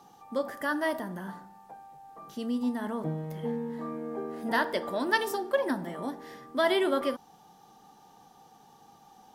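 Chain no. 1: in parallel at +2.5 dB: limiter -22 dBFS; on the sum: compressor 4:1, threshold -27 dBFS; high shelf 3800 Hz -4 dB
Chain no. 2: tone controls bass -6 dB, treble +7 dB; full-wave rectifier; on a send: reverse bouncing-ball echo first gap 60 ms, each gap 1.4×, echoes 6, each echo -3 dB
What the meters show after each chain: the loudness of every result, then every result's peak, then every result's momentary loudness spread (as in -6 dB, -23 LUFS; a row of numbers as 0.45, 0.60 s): -31.5, -33.0 LUFS; -17.0, -8.5 dBFS; 20, 18 LU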